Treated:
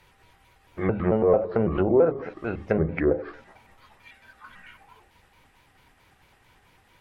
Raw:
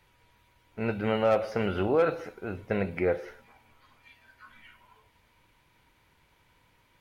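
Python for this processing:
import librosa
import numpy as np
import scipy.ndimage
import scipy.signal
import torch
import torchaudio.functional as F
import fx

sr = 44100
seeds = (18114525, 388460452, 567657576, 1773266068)

y = fx.pitch_trill(x, sr, semitones=-3.5, every_ms=111)
y = fx.env_lowpass_down(y, sr, base_hz=720.0, full_db=-24.0)
y = fx.hum_notches(y, sr, base_hz=50, count=6)
y = y * 10.0 ** (6.5 / 20.0)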